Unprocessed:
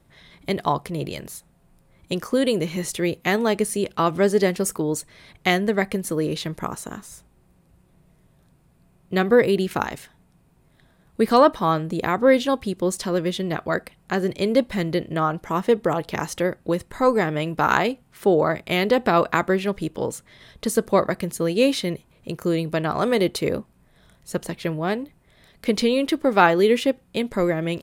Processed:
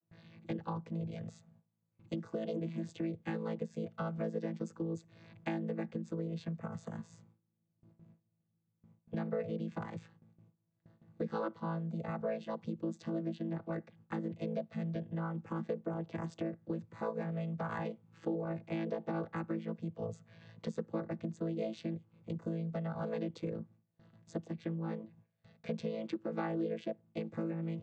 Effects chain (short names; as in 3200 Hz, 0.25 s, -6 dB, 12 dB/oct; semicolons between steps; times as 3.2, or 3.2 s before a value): chord vocoder bare fifth, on A2; gate with hold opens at -47 dBFS; compressor 3:1, threshold -33 dBFS, peak gain reduction 15.5 dB; gain -5 dB